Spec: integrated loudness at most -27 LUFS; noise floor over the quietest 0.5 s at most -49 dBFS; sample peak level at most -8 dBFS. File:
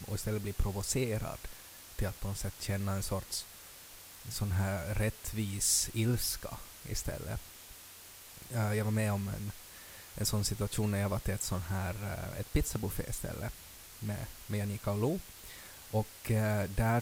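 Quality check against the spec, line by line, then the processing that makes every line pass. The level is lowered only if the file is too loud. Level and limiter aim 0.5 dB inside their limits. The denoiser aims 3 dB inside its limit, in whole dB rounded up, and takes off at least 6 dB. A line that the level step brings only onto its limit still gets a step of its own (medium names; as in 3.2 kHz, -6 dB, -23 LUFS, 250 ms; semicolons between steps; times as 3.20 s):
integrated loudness -35.0 LUFS: pass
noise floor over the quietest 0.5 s -52 dBFS: pass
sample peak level -16.0 dBFS: pass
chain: none needed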